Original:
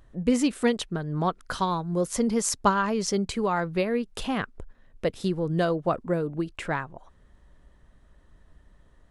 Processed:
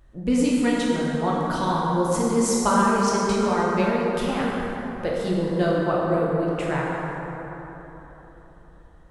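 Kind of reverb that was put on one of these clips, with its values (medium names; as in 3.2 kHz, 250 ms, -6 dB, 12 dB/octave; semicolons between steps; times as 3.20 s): plate-style reverb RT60 3.9 s, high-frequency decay 0.45×, DRR -5.5 dB; trim -2.5 dB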